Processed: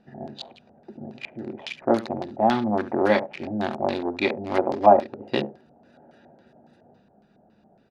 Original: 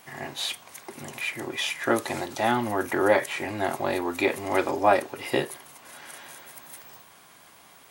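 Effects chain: Wiener smoothing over 41 samples; bell 210 Hz +12.5 dB 0.27 oct; echo 71 ms -14.5 dB; LFO low-pass square 3.6 Hz 750–4600 Hz

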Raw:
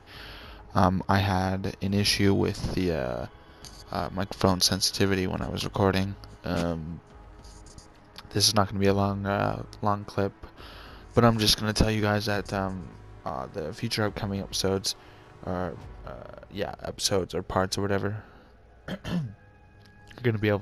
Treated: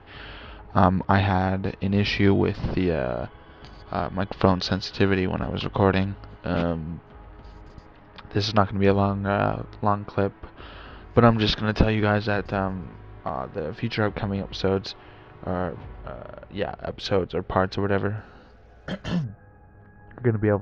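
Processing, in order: LPF 3500 Hz 24 dB/oct, from 18.18 s 6700 Hz, from 19.24 s 1600 Hz; gain +3.5 dB

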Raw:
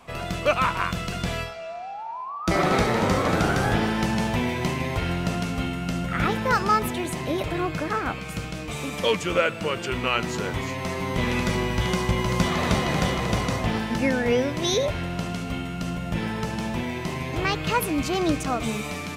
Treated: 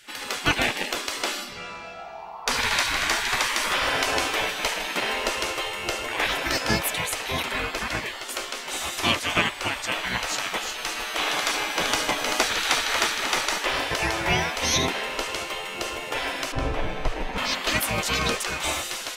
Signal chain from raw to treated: spectral gate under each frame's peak -15 dB weak; 16.52–17.38 tilt -4.5 dB/oct; gain +8.5 dB

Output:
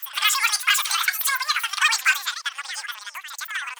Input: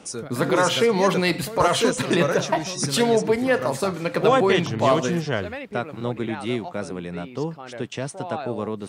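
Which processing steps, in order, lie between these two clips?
speed mistake 33 rpm record played at 78 rpm; HPF 1500 Hz 24 dB/oct; gain +3.5 dB

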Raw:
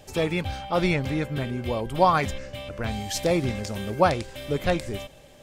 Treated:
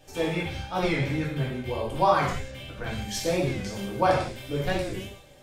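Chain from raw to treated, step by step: non-linear reverb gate 0.23 s falling, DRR -6 dB; record warp 45 rpm, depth 100 cents; gain -8.5 dB

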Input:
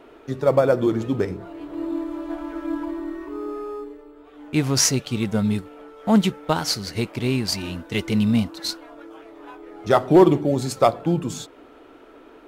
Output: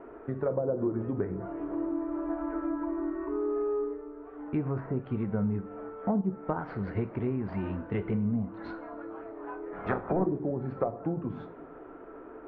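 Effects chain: 9.72–10.24 spectral limiter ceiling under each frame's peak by 22 dB; treble ducked by the level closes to 550 Hz, closed at -13 dBFS; LPF 1700 Hz 24 dB/oct; compressor 3:1, threshold -30 dBFS, peak gain reduction 14 dB; two-slope reverb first 0.38 s, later 3.3 s, from -22 dB, DRR 9 dB

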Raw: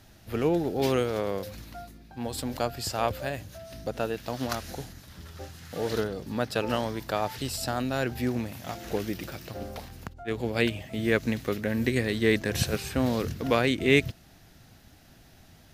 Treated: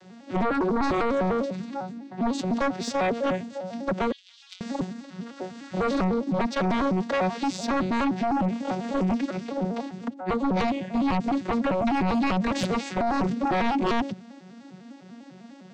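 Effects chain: arpeggiated vocoder major triad, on F#3, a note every 0.1 s; limiter -22 dBFS, peak gain reduction 12 dB; sine folder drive 8 dB, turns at -22 dBFS; 4.12–4.61 ladder high-pass 2800 Hz, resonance 55%; gain +1.5 dB

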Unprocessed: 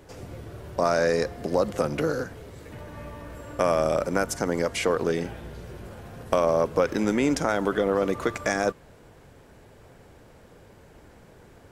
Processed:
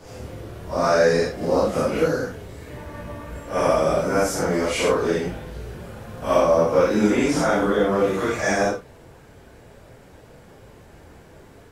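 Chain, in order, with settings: phase scrambler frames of 0.2 s; gain +4.5 dB

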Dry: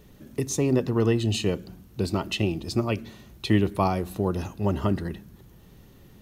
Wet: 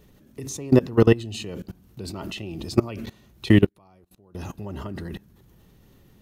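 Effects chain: 3.66–4.35 flipped gate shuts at -29 dBFS, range -29 dB; level quantiser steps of 21 dB; gain +8.5 dB

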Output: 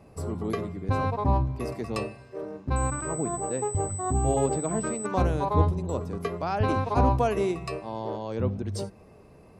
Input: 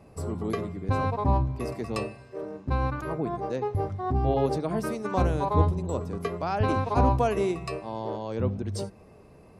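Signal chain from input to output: 2.76–5.06 pulse-width modulation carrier 8000 Hz

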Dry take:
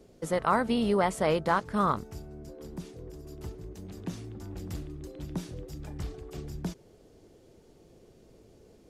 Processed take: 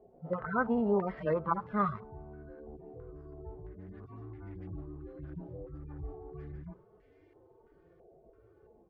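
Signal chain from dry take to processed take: median-filter separation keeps harmonic; echo 79 ms -24 dB; stepped low-pass 3 Hz 740–2100 Hz; gain -3.5 dB

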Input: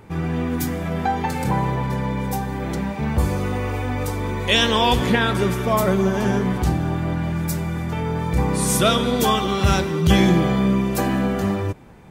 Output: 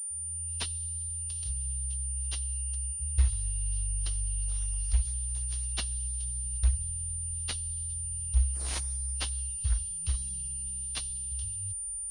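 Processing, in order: opening faded in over 0.57 s; inverse Chebyshev band-stop 310–2200 Hz, stop band 80 dB; 9.49–11.32 bell 69 Hz -9.5 dB 0.4 oct; pulse-width modulation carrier 9200 Hz; gain +2.5 dB

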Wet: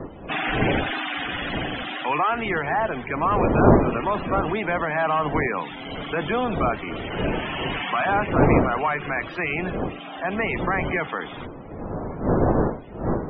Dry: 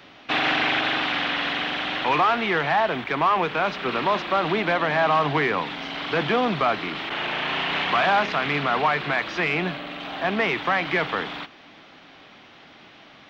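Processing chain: wind noise 480 Hz -24 dBFS; loudest bins only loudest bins 64; gain -2 dB

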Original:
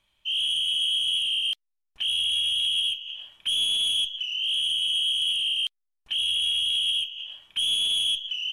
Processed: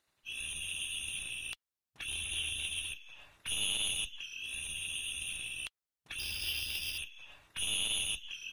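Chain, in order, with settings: dynamic EQ 1200 Hz, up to +6 dB, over -44 dBFS, Q 0.77; spectral gate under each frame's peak -15 dB weak; 6.19–6.98 careless resampling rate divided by 3×, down none, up hold; low shelf 110 Hz +10 dB

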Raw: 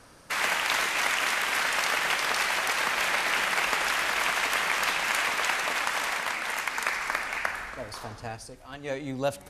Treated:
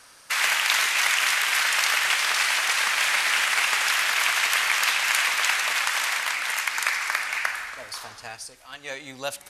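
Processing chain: 2.05–3.88 CVSD 64 kbps; tilt shelf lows -10 dB, about 760 Hz; gain -2.5 dB

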